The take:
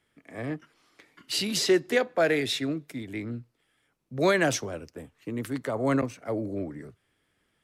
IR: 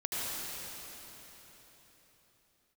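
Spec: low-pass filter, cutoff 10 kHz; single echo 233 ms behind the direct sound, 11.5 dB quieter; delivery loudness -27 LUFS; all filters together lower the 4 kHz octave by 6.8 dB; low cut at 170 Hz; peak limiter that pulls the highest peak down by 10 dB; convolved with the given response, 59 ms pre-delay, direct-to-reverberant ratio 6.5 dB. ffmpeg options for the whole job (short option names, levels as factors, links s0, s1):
-filter_complex "[0:a]highpass=170,lowpass=10000,equalizer=f=4000:t=o:g=-8.5,alimiter=limit=0.0794:level=0:latency=1,aecho=1:1:233:0.266,asplit=2[s0][s1];[1:a]atrim=start_sample=2205,adelay=59[s2];[s1][s2]afir=irnorm=-1:irlink=0,volume=0.224[s3];[s0][s3]amix=inputs=2:normalize=0,volume=1.88"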